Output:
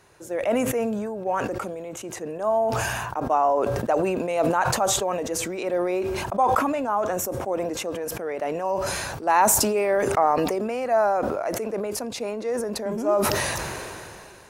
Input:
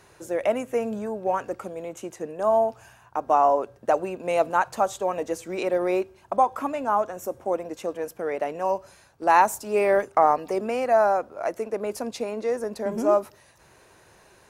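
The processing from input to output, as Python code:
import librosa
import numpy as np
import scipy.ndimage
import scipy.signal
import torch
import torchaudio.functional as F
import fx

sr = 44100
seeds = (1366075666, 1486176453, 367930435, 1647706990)

y = fx.sustainer(x, sr, db_per_s=23.0)
y = F.gain(torch.from_numpy(y), -2.0).numpy()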